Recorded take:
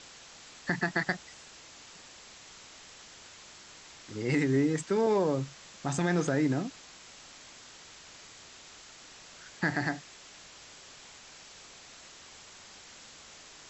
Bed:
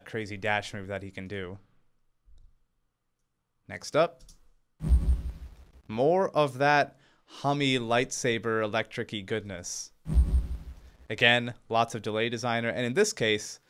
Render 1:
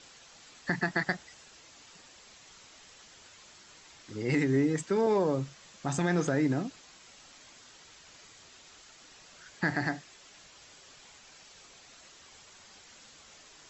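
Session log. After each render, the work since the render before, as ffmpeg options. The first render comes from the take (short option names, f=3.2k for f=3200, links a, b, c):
-af "afftdn=nr=6:nf=-52"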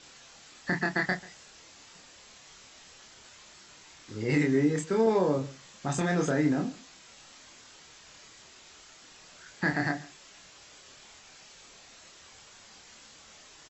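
-filter_complex "[0:a]asplit=2[a][b];[b]adelay=27,volume=-3.5dB[c];[a][c]amix=inputs=2:normalize=0,asplit=2[d][e];[e]adelay=139.9,volume=-20dB,highshelf=f=4k:g=-3.15[f];[d][f]amix=inputs=2:normalize=0"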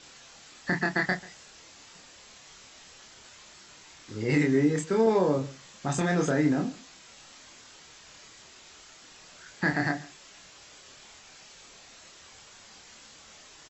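-af "volume=1.5dB"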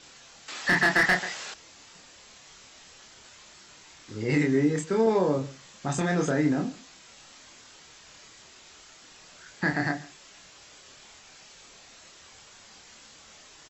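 -filter_complex "[0:a]asettb=1/sr,asplit=3[a][b][c];[a]atrim=end=0.484[d];[b]atrim=start=0.48:end=1.54,asetpts=PTS-STARTPTS,afade=t=in:d=0.004:c=qsin,afade=t=out:st=1.056:d=0.004:c=qsin,asplit=2[e][f];[f]highpass=f=720:p=1,volume=22dB,asoftclip=type=tanh:threshold=-13dB[g];[e][g]amix=inputs=2:normalize=0,lowpass=f=3.7k:p=1,volume=-6dB[h];[c]atrim=start=1.536[i];[d][h]acrossfade=d=0.004:c1=hsin:c2=qsin[j];[j][i]acrossfade=d=0.004:c1=qsin:c2=hsin"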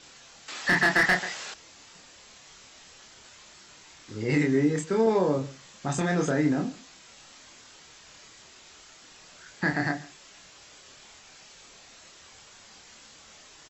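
-af anull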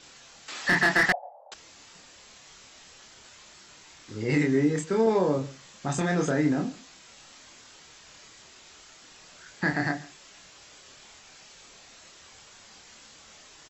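-filter_complex "[0:a]asettb=1/sr,asplit=3[a][b][c];[a]atrim=end=1.124[d];[b]atrim=start=1.12:end=1.52,asetpts=PTS-STARTPTS,afade=t=in:d=0.004:c=qsin,afade=t=out:st=0.396:d=0.004:c=qsin,asuperpass=centerf=680:order=8:qfactor=2[e];[c]atrim=start=1.516[f];[d][e]acrossfade=d=0.004:c1=hsin:c2=qsin[g];[g][f]acrossfade=d=0.004:c1=qsin:c2=hsin"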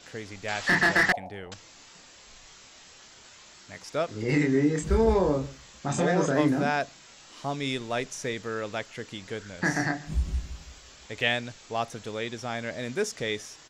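-filter_complex "[1:a]volume=-4.5dB[a];[0:a][a]amix=inputs=2:normalize=0"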